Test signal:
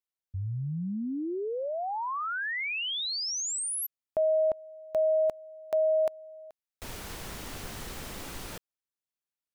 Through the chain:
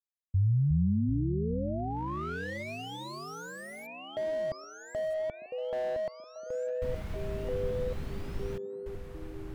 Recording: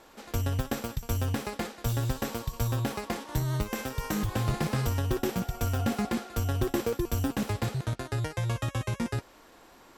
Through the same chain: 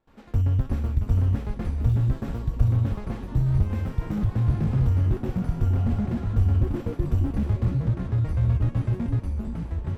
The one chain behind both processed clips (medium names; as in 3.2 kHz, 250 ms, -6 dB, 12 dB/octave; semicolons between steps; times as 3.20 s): gate with hold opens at -45 dBFS, range -19 dB; tone controls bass +14 dB, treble -12 dB; ever faster or slower copies 270 ms, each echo -4 st, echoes 3, each echo -6 dB; repeats whose band climbs or falls 470 ms, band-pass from 270 Hz, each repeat 0.7 oct, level -8 dB; slew-rate limiter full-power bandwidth 35 Hz; trim -5.5 dB